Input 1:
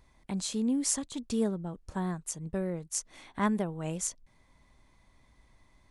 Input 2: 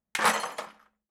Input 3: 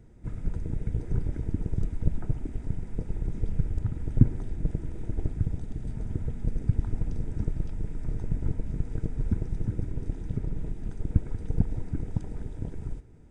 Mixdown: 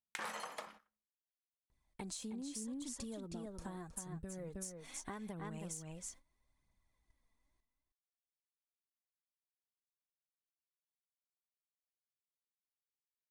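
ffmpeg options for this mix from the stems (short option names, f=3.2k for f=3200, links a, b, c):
-filter_complex "[0:a]aphaser=in_gain=1:out_gain=1:delay=4.6:decay=0.47:speed=0.8:type=triangular,adelay=1700,volume=-4dB,asplit=2[a][b];[b]volume=-9.5dB[c];[1:a]alimiter=limit=-18.5dB:level=0:latency=1:release=129,volume=-2dB[d];[a]highshelf=f=8.4k:g=10.5,acompressor=threshold=-38dB:ratio=6,volume=0dB[e];[c]aecho=0:1:316:1[f];[d][e][f]amix=inputs=3:normalize=0,agate=range=-17dB:threshold=-53dB:ratio=16:detection=peak,acompressor=threshold=-42dB:ratio=5"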